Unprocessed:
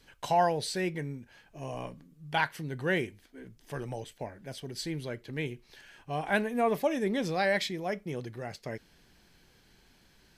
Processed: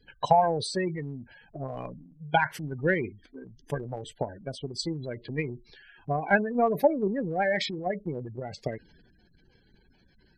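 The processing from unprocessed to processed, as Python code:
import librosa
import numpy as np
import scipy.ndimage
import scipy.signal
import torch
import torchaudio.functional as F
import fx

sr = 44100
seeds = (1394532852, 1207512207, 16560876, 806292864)

y = fx.spec_gate(x, sr, threshold_db=-15, keep='strong')
y = fx.transient(y, sr, attack_db=10, sustain_db=6)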